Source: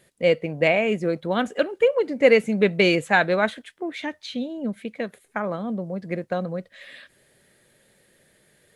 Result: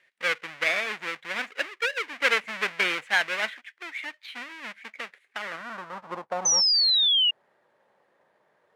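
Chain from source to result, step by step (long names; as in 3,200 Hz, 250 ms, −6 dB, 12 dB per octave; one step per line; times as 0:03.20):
each half-wave held at its own peak
band-pass filter sweep 2,100 Hz → 900 Hz, 0:05.31–0:06.20
sound drawn into the spectrogram fall, 0:06.45–0:07.31, 2,800–6,200 Hz −21 dBFS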